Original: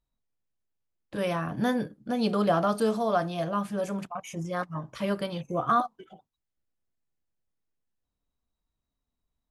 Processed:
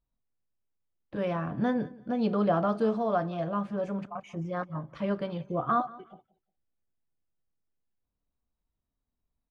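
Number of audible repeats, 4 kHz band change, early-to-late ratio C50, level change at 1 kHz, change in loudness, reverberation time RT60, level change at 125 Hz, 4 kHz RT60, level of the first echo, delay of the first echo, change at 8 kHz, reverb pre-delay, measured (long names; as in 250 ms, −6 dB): 2, −9.5 dB, no reverb audible, −2.5 dB, −1.5 dB, no reverb audible, −0.5 dB, no reverb audible, −21.0 dB, 178 ms, below −15 dB, no reverb audible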